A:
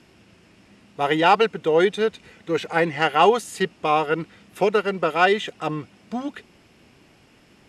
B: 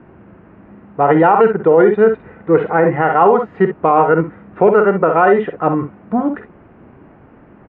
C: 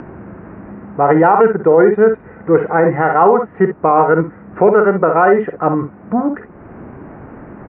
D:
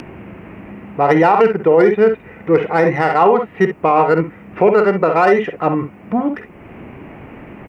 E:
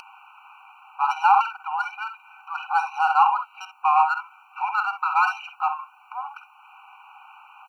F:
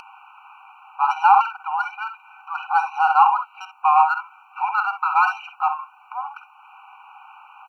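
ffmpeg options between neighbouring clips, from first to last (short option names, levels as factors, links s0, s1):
-af "lowpass=f=1500:w=0.5412,lowpass=f=1500:w=1.3066,aecho=1:1:49|63:0.299|0.266,alimiter=level_in=4.22:limit=0.891:release=50:level=0:latency=1,volume=0.891"
-filter_complex "[0:a]lowpass=f=2200:w=0.5412,lowpass=f=2200:w=1.3066,asplit=2[s0][s1];[s1]acompressor=mode=upward:threshold=0.158:ratio=2.5,volume=0.891[s2];[s0][s2]amix=inputs=2:normalize=0,volume=0.562"
-af "aexciter=amount=4.9:drive=9.6:freq=2300,volume=0.841"
-af "afftfilt=real='re*eq(mod(floor(b*sr/1024/770),2),1)':imag='im*eq(mod(floor(b*sr/1024/770),2),1)':win_size=1024:overlap=0.75,volume=0.794"
-af "highshelf=f=2600:g=-8,volume=1.58"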